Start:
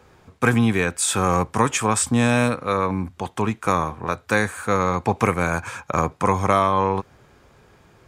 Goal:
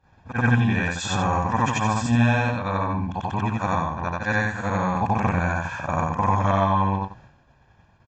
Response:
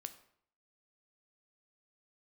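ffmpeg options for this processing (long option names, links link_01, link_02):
-filter_complex "[0:a]afftfilt=real='re':imag='-im':win_size=8192:overlap=0.75,aemphasis=mode=reproduction:type=50kf,agate=range=-33dB:threshold=-50dB:ratio=3:detection=peak,equalizer=frequency=2200:width=6.7:gain=-3.5,asplit=2[link_01][link_02];[link_02]acompressor=threshold=-32dB:ratio=12,volume=-0.5dB[link_03];[link_01][link_03]amix=inputs=2:normalize=0,aecho=1:1:1.2:0.68" -ar 16000 -c:a libvorbis -b:a 64k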